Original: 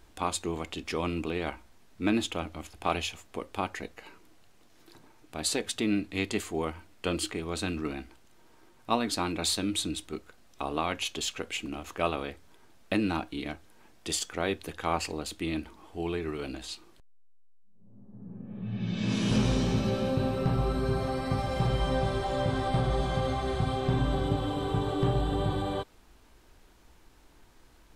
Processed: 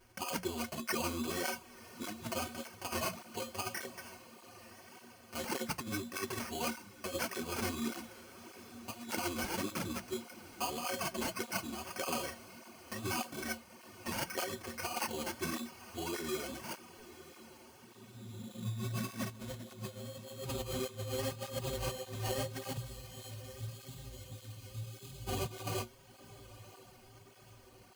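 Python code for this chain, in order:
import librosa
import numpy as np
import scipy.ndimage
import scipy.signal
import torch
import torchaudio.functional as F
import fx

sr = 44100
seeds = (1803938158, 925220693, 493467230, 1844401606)

y = fx.stiff_resonator(x, sr, f0_hz=110.0, decay_s=0.26, stiffness=0.03)
y = fx.sample_hold(y, sr, seeds[0], rate_hz=3700.0, jitter_pct=0)
y = fx.tone_stack(y, sr, knobs='6-0-2', at=(22.76, 25.27), fade=0.02)
y = fx.hum_notches(y, sr, base_hz=60, count=3)
y = fx.over_compress(y, sr, threshold_db=-41.0, ratio=-0.5)
y = fx.high_shelf(y, sr, hz=3000.0, db=8.0)
y = fx.echo_diffused(y, sr, ms=997, feedback_pct=58, wet_db=-16)
y = fx.flanger_cancel(y, sr, hz=1.7, depth_ms=7.3)
y = y * librosa.db_to_amplitude(6.0)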